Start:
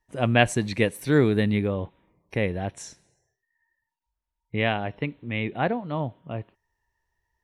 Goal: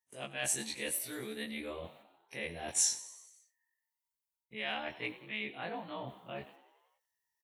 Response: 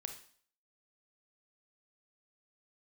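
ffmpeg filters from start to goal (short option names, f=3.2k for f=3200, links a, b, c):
-filter_complex "[0:a]afftfilt=real='re':imag='-im':win_size=2048:overlap=0.75,agate=range=-13dB:threshold=-55dB:ratio=16:detection=peak,areverse,acompressor=threshold=-38dB:ratio=16,areverse,highpass=f=240:p=1,asplit=2[a][b];[b]asplit=6[c][d][e][f][g][h];[c]adelay=93,afreqshift=65,volume=-17dB[i];[d]adelay=186,afreqshift=130,volume=-21.3dB[j];[e]adelay=279,afreqshift=195,volume=-25.6dB[k];[f]adelay=372,afreqshift=260,volume=-29.9dB[l];[g]adelay=465,afreqshift=325,volume=-34.2dB[m];[h]adelay=558,afreqshift=390,volume=-38.5dB[n];[i][j][k][l][m][n]amix=inputs=6:normalize=0[o];[a][o]amix=inputs=2:normalize=0,crystalizer=i=7:c=0"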